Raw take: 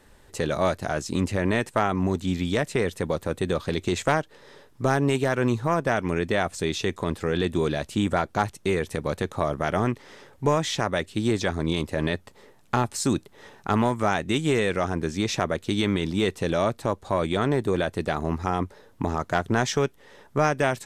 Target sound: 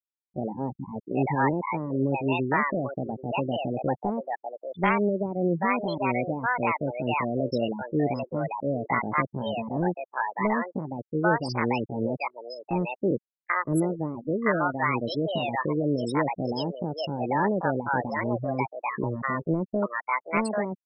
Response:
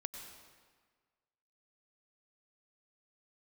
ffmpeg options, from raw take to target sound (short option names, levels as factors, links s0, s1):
-filter_complex "[0:a]afftfilt=real='re*gte(hypot(re,im),0.126)':imag='im*gte(hypot(re,im),0.126)':win_size=1024:overlap=0.75,asetrate=64194,aresample=44100,atempo=0.686977,acrossover=split=620[s0][s1];[s1]adelay=790[s2];[s0][s2]amix=inputs=2:normalize=0"